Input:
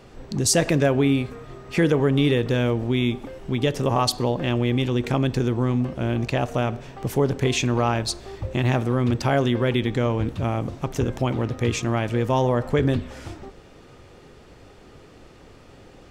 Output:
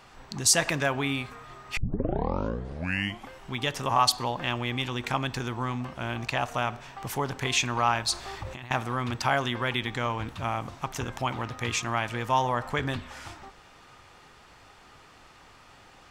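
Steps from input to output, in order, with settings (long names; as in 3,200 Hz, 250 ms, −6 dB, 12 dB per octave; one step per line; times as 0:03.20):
low shelf with overshoot 660 Hz −10 dB, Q 1.5
0:01.77: tape start 1.54 s
0:08.12–0:08.71: compressor whose output falls as the input rises −38 dBFS, ratio −1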